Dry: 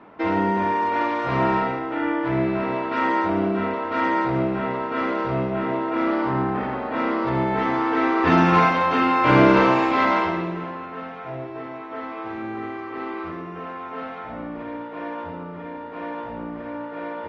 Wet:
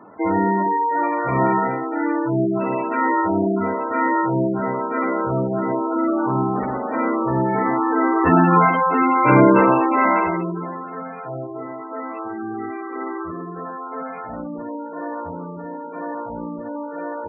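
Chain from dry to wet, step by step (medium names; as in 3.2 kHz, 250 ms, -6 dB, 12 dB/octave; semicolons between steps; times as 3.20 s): spectral gate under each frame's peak -15 dB strong; trim +3 dB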